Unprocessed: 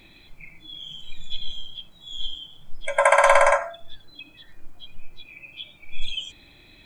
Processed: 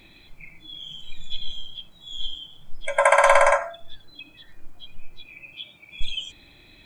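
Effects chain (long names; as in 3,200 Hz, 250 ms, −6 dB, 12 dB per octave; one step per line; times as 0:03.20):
0:05.54–0:06.01: high-pass filter 99 Hz 12 dB per octave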